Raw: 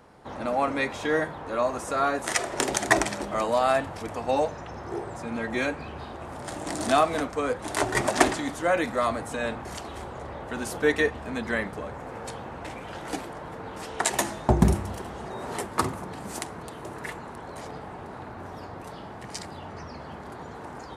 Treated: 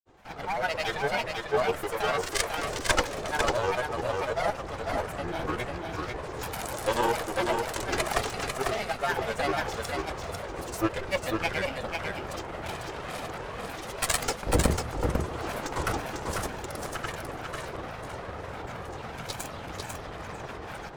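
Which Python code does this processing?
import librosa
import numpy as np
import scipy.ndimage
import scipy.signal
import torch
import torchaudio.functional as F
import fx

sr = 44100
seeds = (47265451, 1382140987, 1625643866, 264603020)

p1 = fx.lower_of_two(x, sr, delay_ms=1.8)
p2 = fx.rider(p1, sr, range_db=3, speed_s=0.5)
p3 = fx.granulator(p2, sr, seeds[0], grain_ms=100.0, per_s=20.0, spray_ms=100.0, spread_st=7)
y = p3 + fx.echo_single(p3, sr, ms=497, db=-4.0, dry=0)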